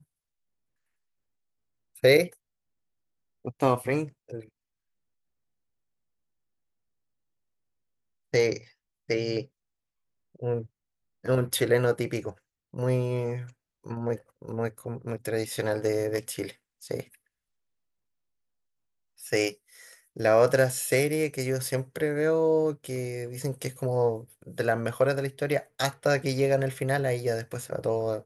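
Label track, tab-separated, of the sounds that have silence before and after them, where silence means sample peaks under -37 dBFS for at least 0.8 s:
2.030000	2.280000	sound
3.450000	4.410000	sound
8.340000	9.430000	sound
10.420000	17.020000	sound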